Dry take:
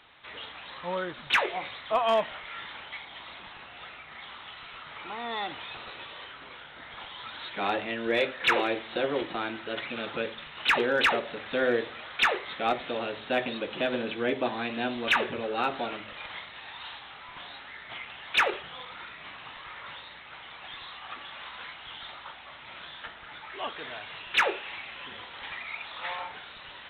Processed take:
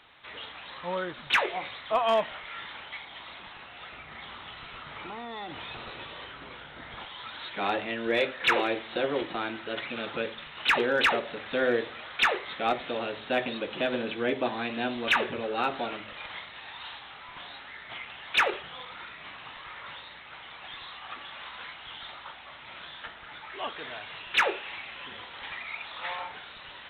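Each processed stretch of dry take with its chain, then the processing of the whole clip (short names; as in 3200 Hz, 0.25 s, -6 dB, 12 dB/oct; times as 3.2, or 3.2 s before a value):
3.92–7.04 low shelf 440 Hz +8 dB + compressor, threshold -35 dBFS
whole clip: dry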